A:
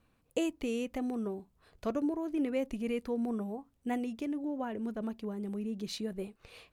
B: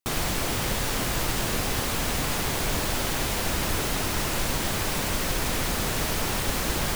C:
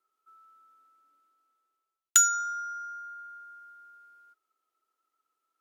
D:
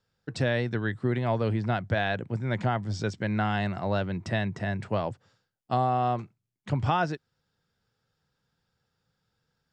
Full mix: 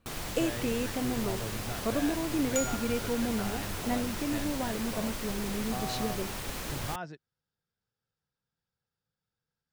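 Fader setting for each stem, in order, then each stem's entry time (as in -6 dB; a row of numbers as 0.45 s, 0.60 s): +2.0 dB, -10.5 dB, -13.5 dB, -13.0 dB; 0.00 s, 0.00 s, 0.40 s, 0.00 s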